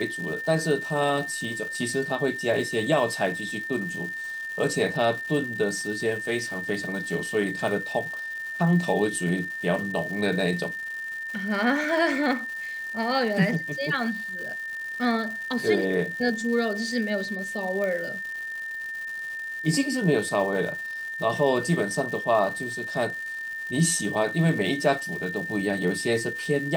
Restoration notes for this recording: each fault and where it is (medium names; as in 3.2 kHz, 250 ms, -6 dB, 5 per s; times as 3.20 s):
crackle 370 per s -35 dBFS
whine 1.8 kHz -31 dBFS
17.84 s: pop -19 dBFS